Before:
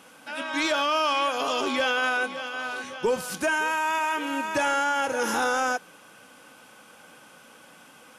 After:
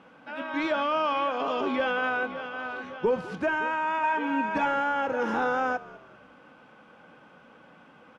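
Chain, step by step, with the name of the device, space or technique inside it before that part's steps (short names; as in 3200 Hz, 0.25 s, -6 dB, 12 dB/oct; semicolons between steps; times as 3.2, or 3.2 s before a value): phone in a pocket (LPF 3100 Hz 12 dB/oct; bell 170 Hz +3 dB; high shelf 2100 Hz -9 dB); 4.03–4.66 comb 4.4 ms, depth 76%; frequency-shifting echo 0.198 s, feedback 37%, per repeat -64 Hz, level -19.5 dB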